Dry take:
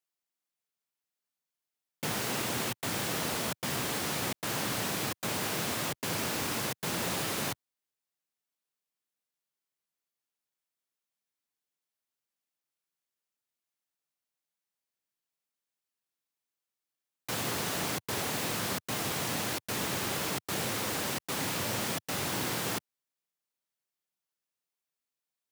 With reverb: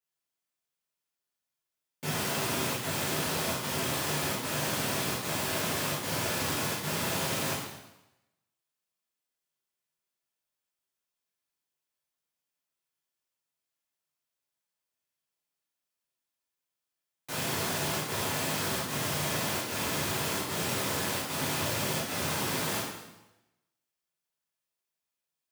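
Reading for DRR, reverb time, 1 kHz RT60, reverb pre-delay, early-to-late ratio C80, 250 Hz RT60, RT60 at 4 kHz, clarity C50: -8.5 dB, 0.95 s, 0.95 s, 5 ms, 4.0 dB, 0.90 s, 0.90 s, 1.5 dB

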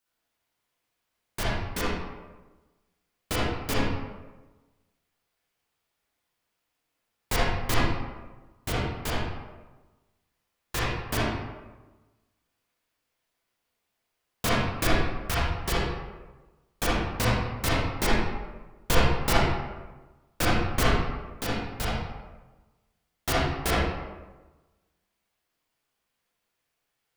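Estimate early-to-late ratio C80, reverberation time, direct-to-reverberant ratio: 1.0 dB, 1.2 s, -8.0 dB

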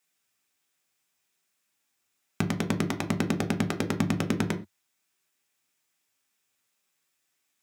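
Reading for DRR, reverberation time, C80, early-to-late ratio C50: 5.5 dB, no single decay rate, 21.5 dB, 15.5 dB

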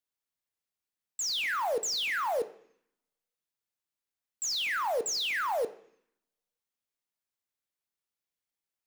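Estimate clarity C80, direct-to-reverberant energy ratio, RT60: 18.0 dB, 8.5 dB, 0.65 s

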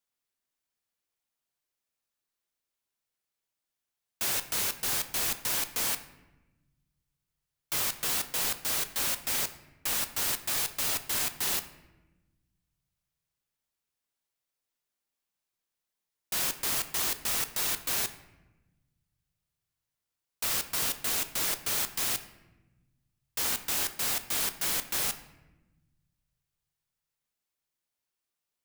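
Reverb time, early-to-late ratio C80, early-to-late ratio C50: 1.1 s, 15.0 dB, 13.0 dB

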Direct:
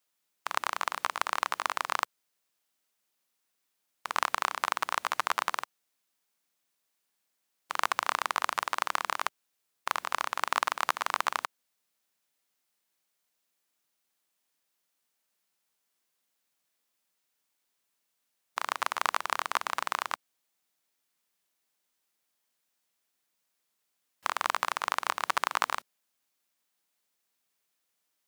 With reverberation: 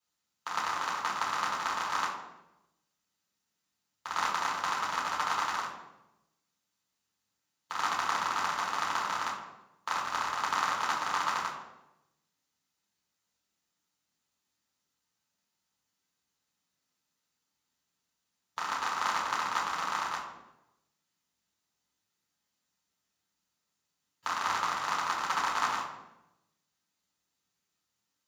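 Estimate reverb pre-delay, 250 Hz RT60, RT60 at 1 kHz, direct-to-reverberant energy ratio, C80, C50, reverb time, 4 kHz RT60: 3 ms, 1.1 s, 0.80 s, -7.0 dB, 7.0 dB, 4.0 dB, 0.90 s, 0.70 s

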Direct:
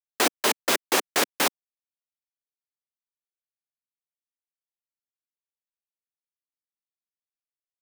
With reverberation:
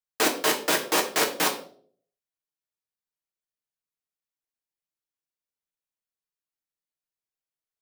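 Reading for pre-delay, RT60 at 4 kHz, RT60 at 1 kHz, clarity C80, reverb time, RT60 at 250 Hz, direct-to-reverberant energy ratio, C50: 6 ms, 0.40 s, 0.45 s, 14.0 dB, 0.55 s, 0.60 s, 1.0 dB, 10.5 dB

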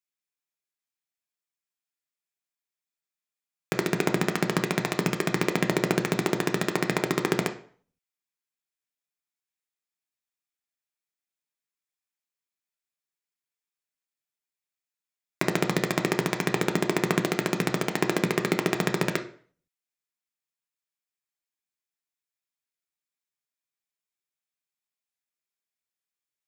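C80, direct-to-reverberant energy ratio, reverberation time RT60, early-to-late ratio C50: 17.5 dB, 5.5 dB, 0.45 s, 12.5 dB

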